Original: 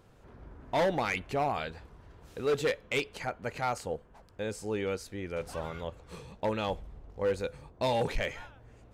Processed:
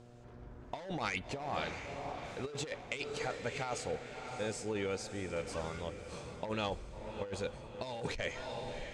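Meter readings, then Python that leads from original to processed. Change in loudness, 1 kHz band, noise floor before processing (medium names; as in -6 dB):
-6.5 dB, -6.5 dB, -58 dBFS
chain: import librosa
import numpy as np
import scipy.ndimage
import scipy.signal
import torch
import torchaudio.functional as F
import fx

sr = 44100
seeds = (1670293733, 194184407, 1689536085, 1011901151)

y = scipy.signal.sosfilt(scipy.signal.butter(4, 8200.0, 'lowpass', fs=sr, output='sos'), x)
y = fx.high_shelf(y, sr, hz=5100.0, db=9.0)
y = fx.dmg_buzz(y, sr, base_hz=120.0, harmonics=6, level_db=-54.0, tilt_db=-4, odd_only=False)
y = fx.echo_diffused(y, sr, ms=656, feedback_pct=46, wet_db=-10)
y = fx.over_compress(y, sr, threshold_db=-31.0, ratio=-0.5)
y = y * 10.0 ** (-5.0 / 20.0)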